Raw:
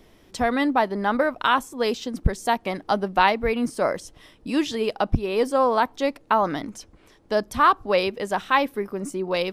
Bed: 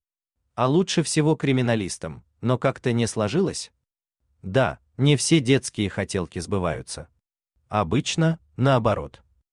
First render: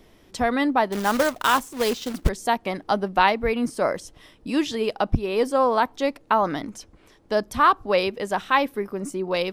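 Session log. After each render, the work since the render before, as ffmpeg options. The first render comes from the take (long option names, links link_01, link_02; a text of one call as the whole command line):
ffmpeg -i in.wav -filter_complex "[0:a]asettb=1/sr,asplit=3[link_01][link_02][link_03];[link_01]atrim=end=0.924[link_04];[link_02]atrim=start=0.92:end=2.29,asetpts=PTS-STARTPTS,afade=type=in:duration=0.004:curve=qsin,afade=type=out:start_time=1.366:duration=0.004:curve=qsin,acrusher=bits=2:mode=log:mix=0:aa=0.000001[link_05];[link_03]atrim=start=2.286[link_06];[link_04][link_05]acrossfade=duration=0.004:curve1=hsin:curve2=qsin[link_07];[link_07][link_06]acrossfade=duration=0.004:curve1=qsin:curve2=hsin" out.wav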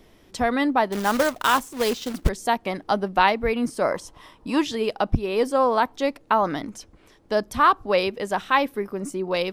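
ffmpeg -i in.wav -filter_complex "[0:a]asettb=1/sr,asplit=3[link_01][link_02][link_03];[link_01]atrim=end=3.914[link_04];[link_02]atrim=start=3.91:end=4.62,asetpts=PTS-STARTPTS,afade=type=in:duration=0.004:curve=qsin,afade=type=out:start_time=0.706:duration=0.004:curve=qsin,equalizer=frequency=1000:width=2.3:gain=13[link_05];[link_03]atrim=start=4.616[link_06];[link_04][link_05]acrossfade=duration=0.004:curve1=hsin:curve2=qsin[link_07];[link_07][link_06]acrossfade=duration=0.004:curve1=qsin:curve2=hsin" out.wav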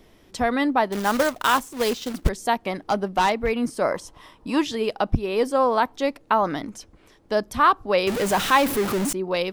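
ffmpeg -i in.wav -filter_complex "[0:a]asettb=1/sr,asplit=3[link_01][link_02][link_03];[link_01]atrim=end=2.874[link_04];[link_02]atrim=start=2.87:end=3.67,asetpts=PTS-STARTPTS,afade=type=in:duration=0.004:curve=qsin,afade=type=out:start_time=0.796:duration=0.004:curve=qsin,asoftclip=type=hard:threshold=-14.5dB[link_05];[link_03]atrim=start=3.666[link_06];[link_04][link_05]acrossfade=duration=0.004:curve1=hsin:curve2=qsin[link_07];[link_07][link_06]acrossfade=duration=0.004:curve1=qsin:curve2=hsin,asettb=1/sr,asplit=3[link_08][link_09][link_10];[link_08]atrim=end=8.074[link_11];[link_09]atrim=start=8.07:end=9.13,asetpts=PTS-STARTPTS,afade=type=in:duration=0.004:curve=qsin,afade=type=out:start_time=1.056:duration=0.004:curve=qsin,aeval=exprs='val(0)+0.5*0.0841*sgn(val(0))':channel_layout=same[link_12];[link_10]atrim=start=9.126[link_13];[link_11][link_12]acrossfade=duration=0.004:curve1=hsin:curve2=qsin[link_14];[link_14][link_13]acrossfade=duration=0.004:curve1=qsin:curve2=hsin" out.wav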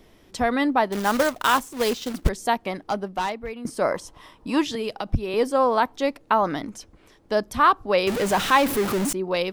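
ffmpeg -i in.wav -filter_complex "[0:a]asettb=1/sr,asplit=3[link_01][link_02][link_03];[link_01]atrim=end=4.754[link_04];[link_02]atrim=start=4.75:end=5.34,asetpts=PTS-STARTPTS,afade=type=in:duration=0.004:curve=qsin,afade=type=out:start_time=0.586:duration=0.004:curve=qsin,acrossover=split=160|3000[link_05][link_06][link_07];[link_06]acompressor=threshold=-25dB:ratio=6:attack=3.2:release=140:knee=2.83:detection=peak[link_08];[link_05][link_08][link_07]amix=inputs=3:normalize=0[link_09];[link_03]atrim=start=5.336[link_10];[link_04][link_09]acrossfade=duration=0.004:curve1=hsin:curve2=qsin[link_11];[link_11][link_10]acrossfade=duration=0.004:curve1=qsin:curve2=hsin,asettb=1/sr,asplit=3[link_12][link_13][link_14];[link_12]atrim=end=8.164[link_15];[link_13]atrim=start=8.16:end=8.69,asetpts=PTS-STARTPTS,afade=type=in:duration=0.004:curve=qsin,afade=type=out:start_time=0.526:duration=0.004:curve=qsin,highshelf=frequency=8500:gain=-4[link_16];[link_14]atrim=start=8.686[link_17];[link_15][link_16]acrossfade=duration=0.004:curve1=hsin:curve2=qsin[link_18];[link_18][link_17]acrossfade=duration=0.004:curve1=qsin:curve2=hsin,asplit=2[link_19][link_20];[link_19]atrim=end=3.65,asetpts=PTS-STARTPTS,afade=type=out:start_time=2.48:duration=1.17:silence=0.211349[link_21];[link_20]atrim=start=3.65,asetpts=PTS-STARTPTS,afade=type=in:duration=0.004:curve=hsin:silence=0.211349[link_22];[link_21][link_22]concat=n=2:v=0:a=1" out.wav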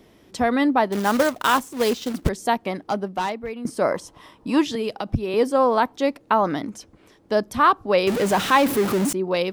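ffmpeg -i in.wav -af "highpass=frequency=250:poles=1,lowshelf=frequency=330:gain=10" out.wav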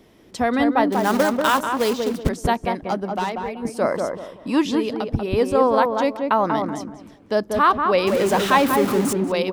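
ffmpeg -i in.wav -filter_complex "[0:a]asplit=2[link_01][link_02];[link_02]adelay=189,lowpass=frequency=1200:poles=1,volume=-3dB,asplit=2[link_03][link_04];[link_04]adelay=189,lowpass=frequency=1200:poles=1,volume=0.32,asplit=2[link_05][link_06];[link_06]adelay=189,lowpass=frequency=1200:poles=1,volume=0.32,asplit=2[link_07][link_08];[link_08]adelay=189,lowpass=frequency=1200:poles=1,volume=0.32[link_09];[link_01][link_03][link_05][link_07][link_09]amix=inputs=5:normalize=0" out.wav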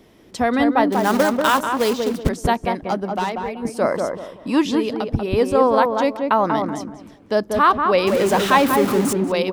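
ffmpeg -i in.wav -af "volume=1.5dB" out.wav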